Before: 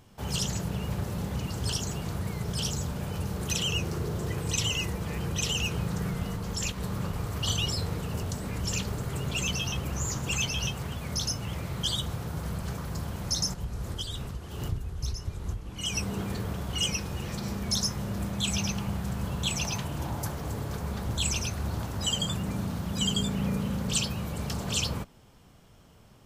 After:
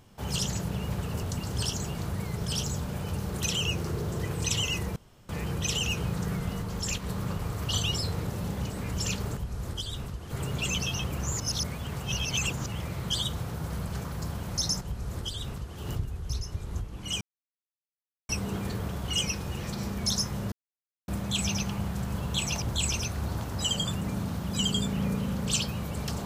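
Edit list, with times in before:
1.01–1.44 s: swap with 8.01–8.37 s
5.03 s: insert room tone 0.33 s
10.13–11.39 s: reverse
13.58–14.52 s: copy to 9.04 s
15.94 s: insert silence 1.08 s
18.17 s: insert silence 0.56 s
19.71–21.04 s: delete

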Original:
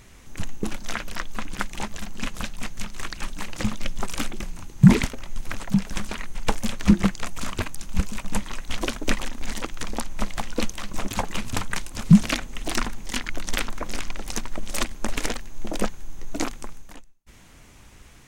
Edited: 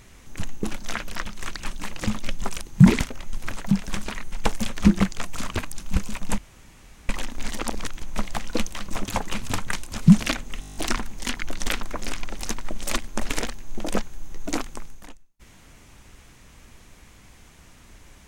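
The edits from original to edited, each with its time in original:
1.26–2.83 s: delete
4.18–4.64 s: delete
8.41–9.12 s: room tone
9.66–10.05 s: reverse
12.63 s: stutter 0.02 s, 9 plays

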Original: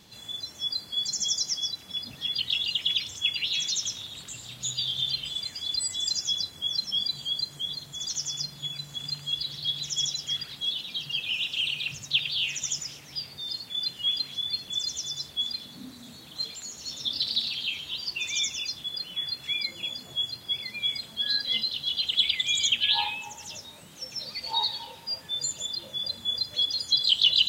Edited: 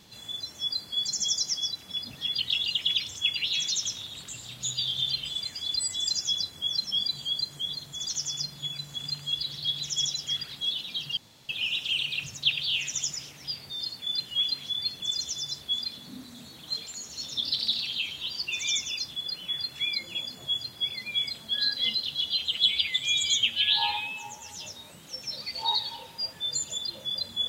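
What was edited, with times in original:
11.17 s: insert room tone 0.32 s
21.94–23.53 s: stretch 1.5×

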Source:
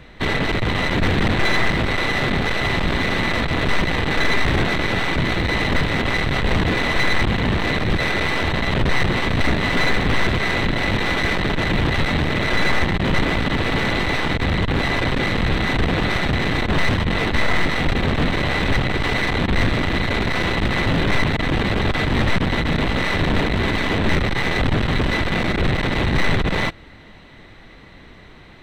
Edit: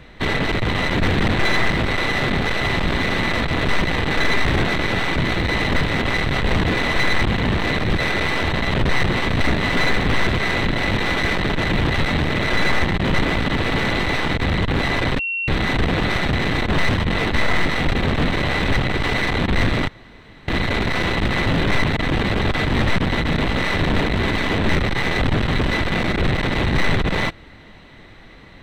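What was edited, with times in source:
15.19–15.48 s: bleep 2.73 kHz -21 dBFS
19.88 s: insert room tone 0.60 s

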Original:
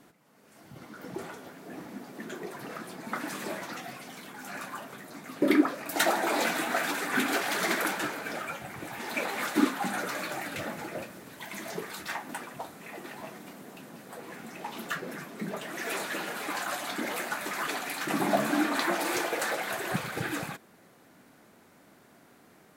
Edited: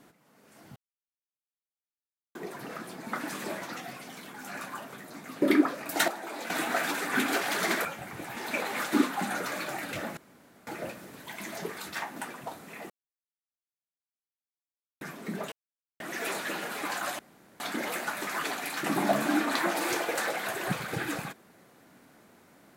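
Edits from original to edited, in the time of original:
0.76–2.35 s: mute
6.08–6.50 s: gain -11 dB
7.85–8.48 s: delete
10.80 s: insert room tone 0.50 s
13.03–15.14 s: mute
15.65 s: insert silence 0.48 s
16.84 s: insert room tone 0.41 s

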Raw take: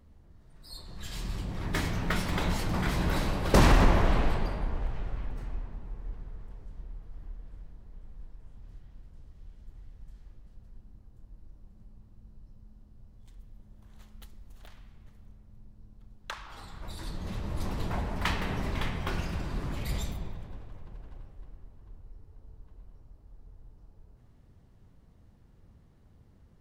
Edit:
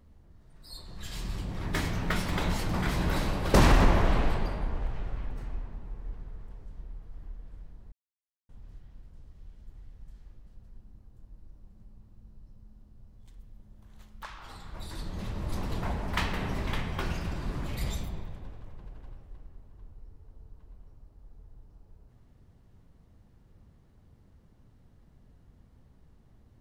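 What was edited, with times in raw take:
7.92–8.49 s: mute
14.23–16.31 s: delete

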